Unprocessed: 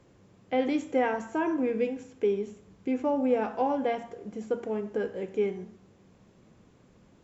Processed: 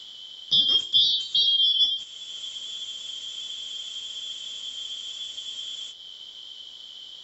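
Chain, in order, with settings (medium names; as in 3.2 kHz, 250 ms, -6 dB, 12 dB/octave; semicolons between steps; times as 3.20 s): four frequency bands reordered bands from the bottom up 3412; spectral freeze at 2.06 s, 3.84 s; three bands compressed up and down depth 40%; trim +8 dB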